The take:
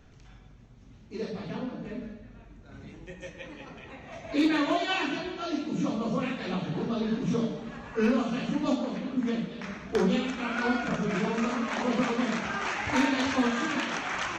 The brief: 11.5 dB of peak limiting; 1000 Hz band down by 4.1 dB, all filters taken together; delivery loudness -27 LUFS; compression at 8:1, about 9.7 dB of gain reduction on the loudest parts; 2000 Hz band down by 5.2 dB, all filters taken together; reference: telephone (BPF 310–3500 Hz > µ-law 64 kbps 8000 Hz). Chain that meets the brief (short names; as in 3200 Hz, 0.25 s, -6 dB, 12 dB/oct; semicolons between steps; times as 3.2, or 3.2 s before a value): bell 1000 Hz -4 dB; bell 2000 Hz -5 dB; compressor 8:1, threshold -31 dBFS; limiter -33.5 dBFS; BPF 310–3500 Hz; gain +18 dB; µ-law 64 kbps 8000 Hz